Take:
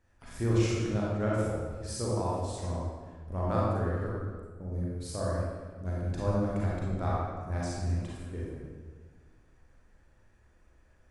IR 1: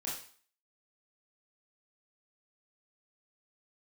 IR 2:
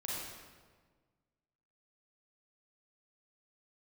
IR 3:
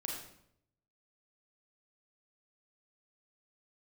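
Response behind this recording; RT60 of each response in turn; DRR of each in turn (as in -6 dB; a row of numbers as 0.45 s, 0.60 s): 2; 0.45 s, 1.5 s, 0.70 s; -6.5 dB, -6.0 dB, -1.5 dB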